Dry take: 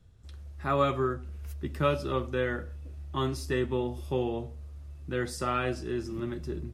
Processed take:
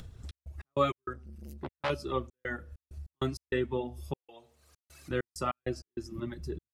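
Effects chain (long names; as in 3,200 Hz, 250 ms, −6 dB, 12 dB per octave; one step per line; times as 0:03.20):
0:04.16–0:05.11: high-pass filter 1,400 Hz 6 dB per octave
reverb reduction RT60 1.9 s
upward compression, threshold −36 dBFS
gate pattern "xx.x.x.xxxx.xxx." 98 BPM −60 dB
0:01.13–0:01.90: saturating transformer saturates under 2,500 Hz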